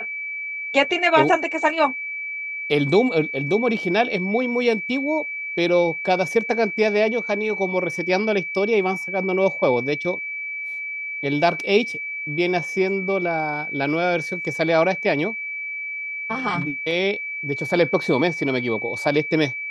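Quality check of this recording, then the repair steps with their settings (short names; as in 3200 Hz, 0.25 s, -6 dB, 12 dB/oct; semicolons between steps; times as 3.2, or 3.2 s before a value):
tone 2300 Hz -27 dBFS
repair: notch 2300 Hz, Q 30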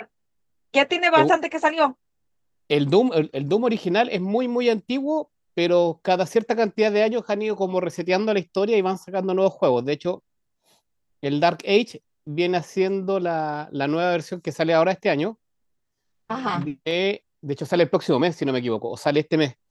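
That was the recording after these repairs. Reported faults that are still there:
none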